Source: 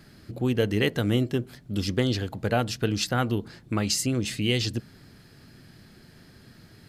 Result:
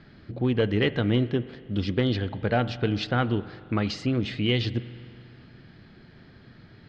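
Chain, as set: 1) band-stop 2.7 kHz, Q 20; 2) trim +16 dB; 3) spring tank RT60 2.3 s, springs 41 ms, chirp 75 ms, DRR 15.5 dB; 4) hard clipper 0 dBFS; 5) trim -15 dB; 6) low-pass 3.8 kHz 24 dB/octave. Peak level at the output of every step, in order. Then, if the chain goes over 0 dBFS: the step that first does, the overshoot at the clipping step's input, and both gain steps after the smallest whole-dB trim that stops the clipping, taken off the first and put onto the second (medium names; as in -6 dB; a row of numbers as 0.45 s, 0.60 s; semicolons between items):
-11.0 dBFS, +5.0 dBFS, +5.0 dBFS, 0.0 dBFS, -15.0 dBFS, -13.5 dBFS; step 2, 5.0 dB; step 2 +11 dB, step 5 -10 dB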